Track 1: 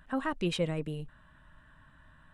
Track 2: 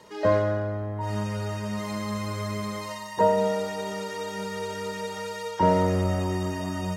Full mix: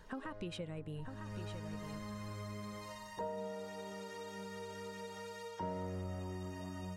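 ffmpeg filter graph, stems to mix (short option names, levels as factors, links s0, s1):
-filter_complex "[0:a]acompressor=threshold=0.0126:ratio=6,volume=0.668,asplit=3[s0][s1][s2];[s1]volume=0.422[s3];[1:a]acompressor=threshold=0.0224:ratio=2,volume=0.251[s4];[s2]apad=whole_len=307306[s5];[s4][s5]sidechaincompress=threshold=0.00178:ratio=6:attack=39:release=351[s6];[s3]aecho=0:1:951:1[s7];[s0][s6][s7]amix=inputs=3:normalize=0,lowshelf=f=180:g=3"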